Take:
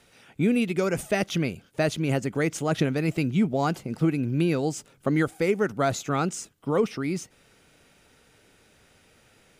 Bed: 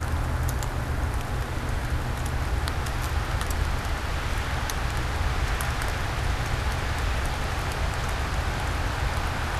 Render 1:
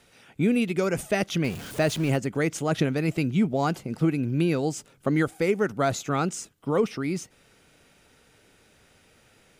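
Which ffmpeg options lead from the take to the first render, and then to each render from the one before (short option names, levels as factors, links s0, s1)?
-filter_complex "[0:a]asettb=1/sr,asplit=3[s0][s1][s2];[s0]atrim=end=1.444[s3];[s1]atrim=start=1.44:end=2.16,asetpts=PTS-STARTPTS,afade=t=in:d=0.004:c=qsin,afade=t=out:st=0.716:d=0.004:c=qsin,aeval=exprs='val(0)+0.5*0.02*sgn(val(0))':c=same[s4];[s2]atrim=start=2.156[s5];[s3][s4]acrossfade=d=0.004:c1=hsin:c2=qsin[s6];[s6][s5]acrossfade=d=0.004:c1=qsin:c2=hsin"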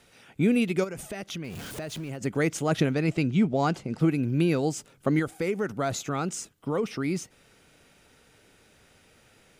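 -filter_complex "[0:a]asplit=3[s0][s1][s2];[s0]afade=t=out:st=0.83:d=0.02[s3];[s1]acompressor=threshold=0.0224:ratio=5:attack=3.2:release=140:knee=1:detection=peak,afade=t=in:st=0.83:d=0.02,afade=t=out:st=2.2:d=0.02[s4];[s2]afade=t=in:st=2.2:d=0.02[s5];[s3][s4][s5]amix=inputs=3:normalize=0,asettb=1/sr,asplit=3[s6][s7][s8];[s6]atrim=end=2.934[s9];[s7]atrim=start=2.93:end=4,asetpts=PTS-STARTPTS,afade=t=in:d=0.004:c=qsin,afade=t=out:st=1.066:d=0.004:c=qsin,lowpass=7900[s10];[s8]atrim=start=3.996[s11];[s9][s10]acrossfade=d=0.004:c1=hsin:c2=qsin[s12];[s12][s11]acrossfade=d=0.004:c1=qsin:c2=hsin,asettb=1/sr,asplit=3[s13][s14][s15];[s13]atrim=end=5.194[s16];[s14]atrim=start=5.19:end=6.9,asetpts=PTS-STARTPTS,afade=t=in:d=0.004:c=qsin,afade=t=out:st=1.706:d=0.004:c=qsin,acompressor=threshold=0.0501:ratio=2:attack=3.2:release=140:knee=1:detection=peak[s17];[s15]atrim=start=6.896[s18];[s16][s17]acrossfade=d=0.004:c1=hsin:c2=qsin[s19];[s19][s18]acrossfade=d=0.004:c1=qsin:c2=hsin"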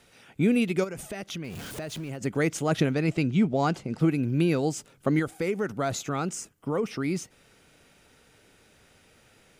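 -filter_complex "[0:a]asettb=1/sr,asplit=3[s0][s1][s2];[s0]atrim=end=6.324[s3];[s1]atrim=start=6.32:end=6.89,asetpts=PTS-STARTPTS,afade=t=in:d=0.004:c=qsin,afade=t=out:st=0.566:d=0.004:c=qsin,equalizer=f=3800:w=2.6:g=-8[s4];[s2]atrim=start=6.886[s5];[s3][s4]acrossfade=d=0.004:c1=hsin:c2=qsin[s6];[s6][s5]acrossfade=d=0.004:c1=qsin:c2=hsin"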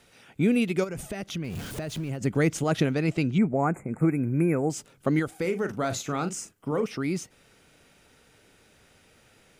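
-filter_complex "[0:a]asettb=1/sr,asplit=3[s0][s1][s2];[s0]atrim=end=0.894[s3];[s1]atrim=start=0.89:end=2.64,asetpts=PTS-STARTPTS,afade=t=in:d=0.004:c=qsin,afade=t=out:st=1.746:d=0.004:c=qsin,lowshelf=f=200:g=7.5[s4];[s2]atrim=start=2.636[s5];[s3][s4]acrossfade=d=0.004:c1=hsin:c2=qsin[s6];[s6][s5]acrossfade=d=0.004:c1=qsin:c2=hsin,asettb=1/sr,asplit=3[s7][s8][s9];[s7]atrim=end=3.384[s10];[s8]atrim=start=3.38:end=4.7,asetpts=PTS-STARTPTS,afade=t=in:d=0.004:c=qsin,afade=t=out:st=1.316:d=0.004:c=qsin,asuperstop=centerf=4200:order=20:qfactor=0.93[s11];[s9]atrim=start=4.696[s12];[s10][s11]acrossfade=d=0.004:c1=hsin:c2=qsin[s13];[s13][s12]acrossfade=d=0.004:c1=qsin:c2=hsin,asettb=1/sr,asplit=3[s14][s15][s16];[s14]atrim=end=5.414[s17];[s15]atrim=start=5.41:end=6.86,asetpts=PTS-STARTPTS,afade=t=in:d=0.004:c=qsin,afade=t=out:st=1.446:d=0.004:c=qsin,asplit=2[s18][s19];[s19]adelay=40,volume=0.335[s20];[s18][s20]amix=inputs=2:normalize=0,atrim=end_sample=63945[s21];[s16]atrim=start=6.856[s22];[s17][s21]acrossfade=d=0.004:c1=hsin:c2=qsin[s23];[s23][s22]acrossfade=d=0.004:c1=qsin:c2=hsin"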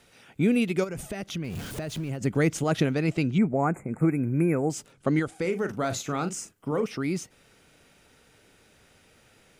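-filter_complex "[0:a]asettb=1/sr,asplit=3[s0][s1][s2];[s0]atrim=end=4.924[s3];[s1]atrim=start=4.92:end=5.52,asetpts=PTS-STARTPTS,afade=t=in:d=0.004:c=qsin,afade=t=out:st=0.596:d=0.004:c=qsin,lowpass=f=10000:w=0.5412,lowpass=f=10000:w=1.3066[s4];[s2]atrim=start=5.516[s5];[s3][s4]acrossfade=d=0.004:c1=hsin:c2=qsin[s6];[s6][s5]acrossfade=d=0.004:c1=qsin:c2=hsin"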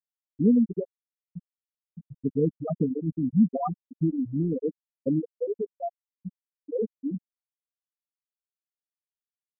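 -af "afftfilt=real='re*gte(hypot(re,im),0.398)':imag='im*gte(hypot(re,im),0.398)':win_size=1024:overlap=0.75,aecho=1:1:4.2:0.55"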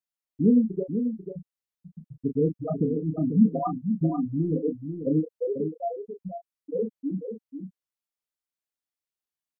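-filter_complex "[0:a]asplit=2[s0][s1];[s1]adelay=32,volume=0.447[s2];[s0][s2]amix=inputs=2:normalize=0,aecho=1:1:491:0.398"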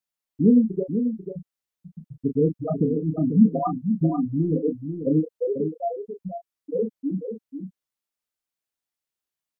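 -af "volume=1.41"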